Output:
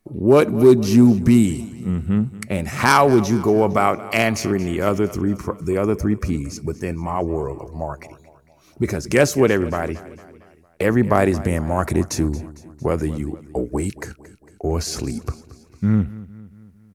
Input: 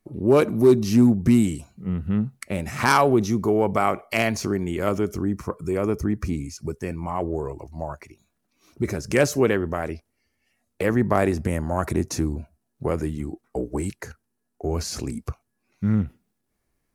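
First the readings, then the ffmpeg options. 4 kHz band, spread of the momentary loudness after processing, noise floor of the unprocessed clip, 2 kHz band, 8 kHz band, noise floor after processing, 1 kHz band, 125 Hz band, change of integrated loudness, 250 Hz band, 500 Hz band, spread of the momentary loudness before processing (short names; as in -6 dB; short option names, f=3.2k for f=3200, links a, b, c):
+4.0 dB, 15 LU, -76 dBFS, +4.0 dB, +4.0 dB, -52 dBFS, +4.0 dB, +4.0 dB, +4.0 dB, +4.0 dB, +4.0 dB, 15 LU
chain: -af "aecho=1:1:227|454|681|908:0.126|0.0667|0.0354|0.0187,volume=4dB"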